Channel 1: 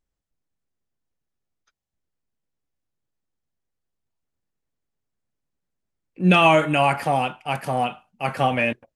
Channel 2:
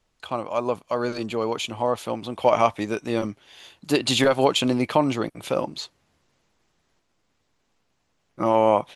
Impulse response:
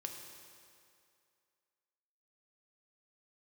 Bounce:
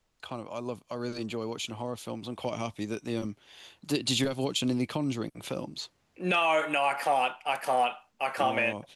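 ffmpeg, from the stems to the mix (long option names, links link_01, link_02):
-filter_complex "[0:a]highpass=480,volume=0.5dB[link_01];[1:a]acrossover=split=330|3000[link_02][link_03][link_04];[link_03]acompressor=threshold=-36dB:ratio=3[link_05];[link_02][link_05][link_04]amix=inputs=3:normalize=0,volume=-4dB[link_06];[link_01][link_06]amix=inputs=2:normalize=0,alimiter=limit=-16dB:level=0:latency=1:release=218"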